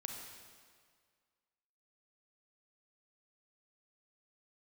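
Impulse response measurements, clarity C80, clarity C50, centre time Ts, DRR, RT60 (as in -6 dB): 4.0 dB, 2.5 dB, 66 ms, 1.5 dB, 1.9 s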